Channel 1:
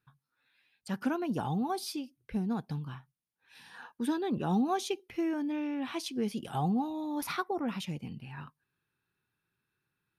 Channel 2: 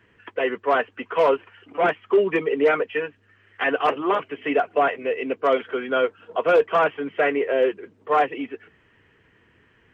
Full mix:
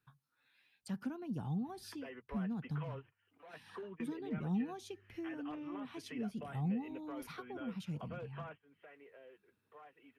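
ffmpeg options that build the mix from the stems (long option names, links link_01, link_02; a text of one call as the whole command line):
ffmpeg -i stem1.wav -i stem2.wav -filter_complex "[0:a]volume=-1.5dB,asplit=2[link_01][link_02];[1:a]equalizer=frequency=360:width_type=o:width=1.4:gain=-5,acompressor=threshold=-39dB:ratio=2,adelay=1650,volume=-2.5dB[link_03];[link_02]apad=whole_len=511116[link_04];[link_03][link_04]sidechaingate=range=-20dB:threshold=-58dB:ratio=16:detection=peak[link_05];[link_01][link_05]amix=inputs=2:normalize=0,acrossover=split=210[link_06][link_07];[link_07]acompressor=threshold=-54dB:ratio=2.5[link_08];[link_06][link_08]amix=inputs=2:normalize=0" out.wav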